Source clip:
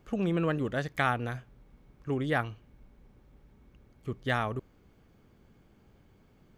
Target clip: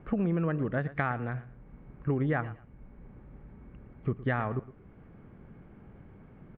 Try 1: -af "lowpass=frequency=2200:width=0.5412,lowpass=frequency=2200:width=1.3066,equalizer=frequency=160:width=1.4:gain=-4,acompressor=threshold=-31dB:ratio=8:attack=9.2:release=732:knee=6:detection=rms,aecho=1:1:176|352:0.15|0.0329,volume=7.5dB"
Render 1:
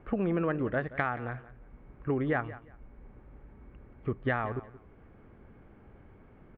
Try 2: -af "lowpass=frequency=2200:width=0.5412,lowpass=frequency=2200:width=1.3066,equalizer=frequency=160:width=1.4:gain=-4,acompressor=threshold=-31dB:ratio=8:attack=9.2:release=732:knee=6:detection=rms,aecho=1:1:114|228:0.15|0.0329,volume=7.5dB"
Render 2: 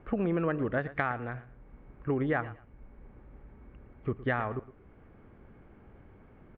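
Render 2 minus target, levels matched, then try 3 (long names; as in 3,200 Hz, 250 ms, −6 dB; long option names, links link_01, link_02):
125 Hz band −4.0 dB
-af "lowpass=frequency=2200:width=0.5412,lowpass=frequency=2200:width=1.3066,equalizer=frequency=160:width=1.4:gain=4.5,acompressor=threshold=-31dB:ratio=8:attack=9.2:release=732:knee=6:detection=rms,aecho=1:1:114|228:0.15|0.0329,volume=7.5dB"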